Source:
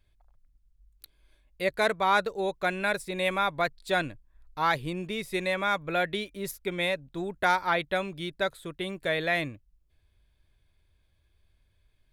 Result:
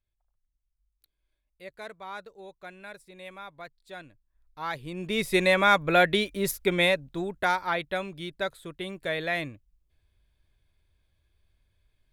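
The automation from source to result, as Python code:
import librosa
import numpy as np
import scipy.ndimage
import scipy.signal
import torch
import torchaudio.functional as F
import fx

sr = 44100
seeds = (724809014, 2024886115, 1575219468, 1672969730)

y = fx.gain(x, sr, db=fx.line((4.04, -16.0), (4.89, -5.0), (5.2, 7.0), (6.73, 7.0), (7.57, -2.0)))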